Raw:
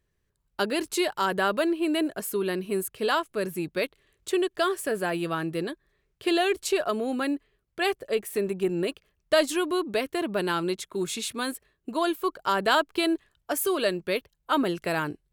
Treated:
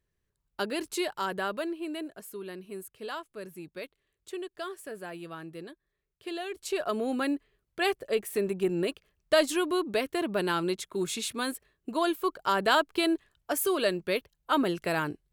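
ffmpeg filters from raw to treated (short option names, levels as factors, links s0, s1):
-af "volume=2,afade=t=out:st=1.04:d=1.11:silence=0.421697,afade=t=in:st=6.51:d=0.51:silence=0.281838"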